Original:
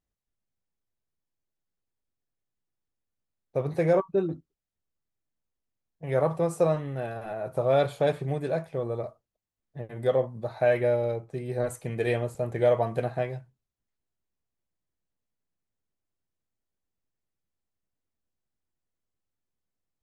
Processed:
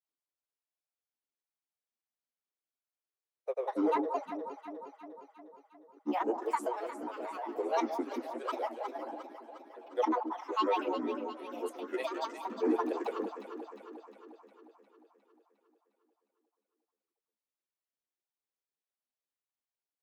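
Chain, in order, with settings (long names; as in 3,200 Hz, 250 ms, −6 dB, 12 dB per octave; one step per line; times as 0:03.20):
Butterworth high-pass 390 Hz 96 dB per octave
granular cloud 100 ms, grains 20 per second, pitch spread up and down by 12 semitones
on a send: delay that swaps between a low-pass and a high-pass 178 ms, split 1,100 Hz, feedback 76%, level −7 dB
on the sum: level −6 dB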